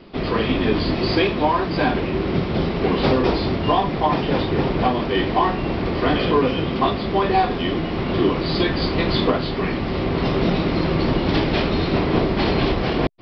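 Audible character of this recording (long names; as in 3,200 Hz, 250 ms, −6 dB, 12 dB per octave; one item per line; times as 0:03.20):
background noise floor −25 dBFS
spectral slope −5.0 dB per octave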